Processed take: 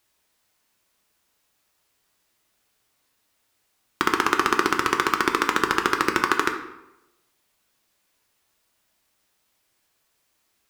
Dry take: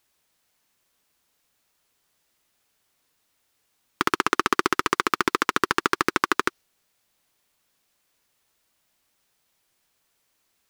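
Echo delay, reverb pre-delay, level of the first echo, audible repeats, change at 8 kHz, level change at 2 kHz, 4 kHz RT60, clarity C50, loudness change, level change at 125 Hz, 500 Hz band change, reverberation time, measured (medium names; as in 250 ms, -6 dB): no echo, 3 ms, no echo, no echo, +1.0 dB, +1.5 dB, 0.65 s, 8.5 dB, +1.5 dB, +1.0 dB, +1.5 dB, 0.90 s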